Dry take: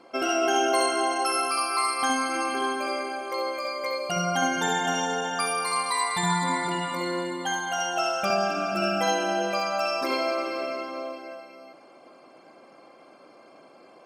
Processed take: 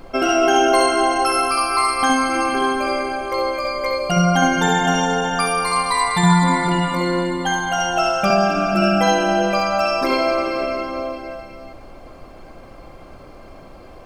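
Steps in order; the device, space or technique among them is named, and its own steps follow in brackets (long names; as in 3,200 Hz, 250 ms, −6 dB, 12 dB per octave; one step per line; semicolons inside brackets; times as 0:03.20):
car interior (parametric band 160 Hz +7.5 dB 0.94 octaves; high-shelf EQ 4,200 Hz −5 dB; brown noise bed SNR 22 dB)
level +8 dB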